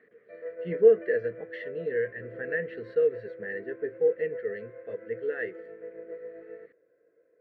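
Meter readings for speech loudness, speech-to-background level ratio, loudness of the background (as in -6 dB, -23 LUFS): -29.0 LUFS, 13.0 dB, -42.0 LUFS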